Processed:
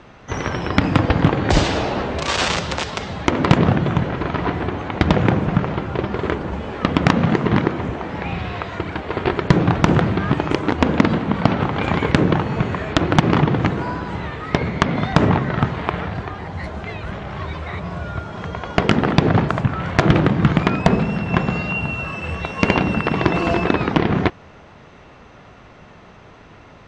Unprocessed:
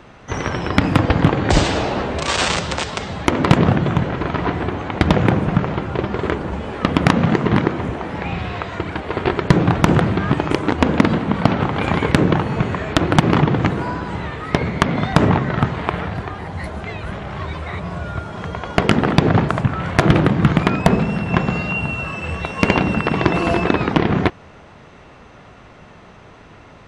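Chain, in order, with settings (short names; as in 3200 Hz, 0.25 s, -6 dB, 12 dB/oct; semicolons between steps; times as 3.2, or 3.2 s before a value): LPF 7300 Hz 24 dB/oct; gain -1 dB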